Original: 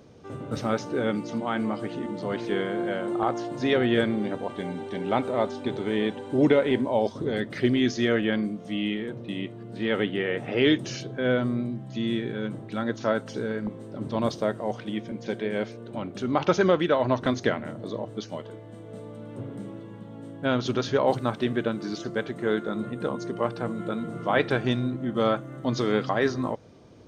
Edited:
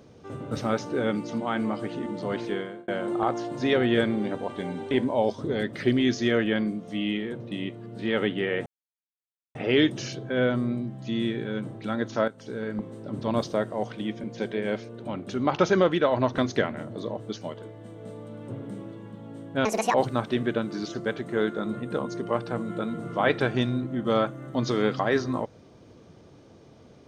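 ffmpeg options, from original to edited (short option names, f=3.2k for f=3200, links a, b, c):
-filter_complex "[0:a]asplit=7[a][b][c][d][e][f][g];[a]atrim=end=2.88,asetpts=PTS-STARTPTS,afade=t=out:st=2.41:d=0.47[h];[b]atrim=start=2.88:end=4.912,asetpts=PTS-STARTPTS,afade=t=in:d=0.004:c=hsin[i];[c]atrim=start=6.678:end=10.43,asetpts=PTS-STARTPTS,afade=t=out:st=3.748:d=0.004:c=hsin,apad=pad_dur=0.89[j];[d]atrim=start=10.43:end=13.16,asetpts=PTS-STARTPTS,afade=t=in:d=0.004:c=hsin,afade=t=out:st=2.726:d=0.004:c=hsin:silence=0.177828[k];[e]atrim=start=13.16:end=20.534,asetpts=PTS-STARTPTS,afade=t=in:d=0.49:silence=0.177828[l];[f]atrim=start=20.53:end=21.04,asetpts=PTS-STARTPTS,asetrate=77175,aresample=44100[m];[g]atrim=start=21.036[n];[h][i]concat=n=2:v=0:a=1[o];[j][k][l]concat=n=3:v=0:a=1[p];[o][p]acrossfade=d=0.004:c1=hsin:c2=hsin[q];[q][m]acrossfade=d=0.004:c1=hsin:c2=hsin[r];[r][n]acrossfade=d=0.004:c1=hsin:c2=hsin"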